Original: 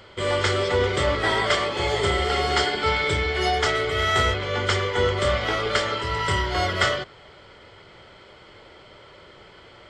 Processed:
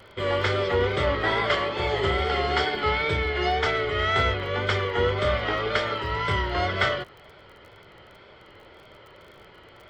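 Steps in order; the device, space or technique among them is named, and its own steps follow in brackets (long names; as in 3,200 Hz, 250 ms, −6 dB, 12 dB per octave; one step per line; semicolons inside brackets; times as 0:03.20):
lo-fi chain (low-pass filter 3,600 Hz 12 dB per octave; tape wow and flutter; surface crackle 29 per second −40 dBFS)
level −1.5 dB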